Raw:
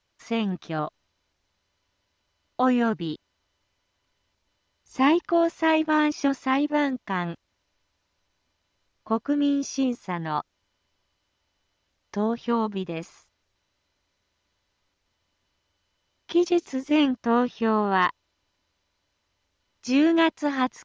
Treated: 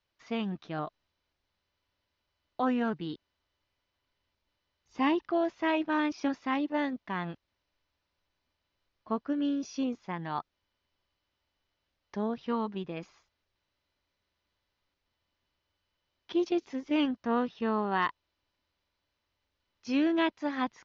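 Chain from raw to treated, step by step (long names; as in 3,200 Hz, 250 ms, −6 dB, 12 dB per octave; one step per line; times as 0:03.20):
low-pass filter 5,300 Hz 24 dB per octave
level −7 dB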